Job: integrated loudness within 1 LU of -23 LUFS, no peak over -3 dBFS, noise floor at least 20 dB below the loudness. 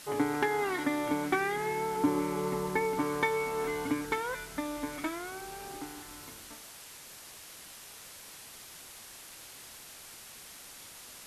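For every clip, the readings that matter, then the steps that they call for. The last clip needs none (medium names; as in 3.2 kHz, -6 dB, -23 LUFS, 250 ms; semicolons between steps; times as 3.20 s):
noise floor -50 dBFS; noise floor target -53 dBFS; loudness -32.5 LUFS; peak level -17.0 dBFS; loudness target -23.0 LUFS
-> noise print and reduce 6 dB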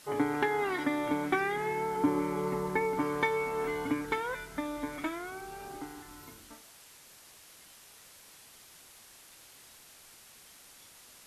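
noise floor -56 dBFS; loudness -32.5 LUFS; peak level -17.0 dBFS; loudness target -23.0 LUFS
-> trim +9.5 dB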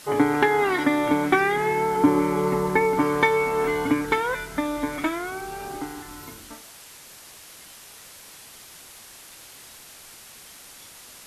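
loudness -23.0 LUFS; peak level -7.5 dBFS; noise floor -46 dBFS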